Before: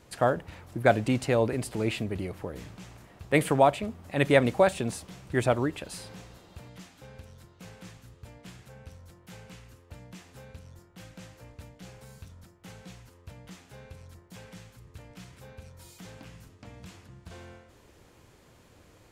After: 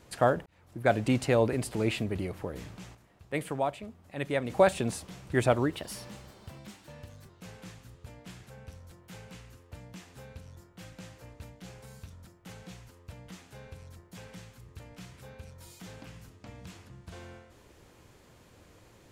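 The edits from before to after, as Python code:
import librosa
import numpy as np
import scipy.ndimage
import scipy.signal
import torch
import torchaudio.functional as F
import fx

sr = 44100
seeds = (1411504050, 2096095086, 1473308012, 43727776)

y = fx.edit(x, sr, fx.fade_in_span(start_s=0.46, length_s=0.65),
    fx.fade_down_up(start_s=2.75, length_s=1.95, db=-9.5, fade_s=0.2, curve='log'),
    fx.speed_span(start_s=5.73, length_s=1.75, speed=1.12), tone=tone)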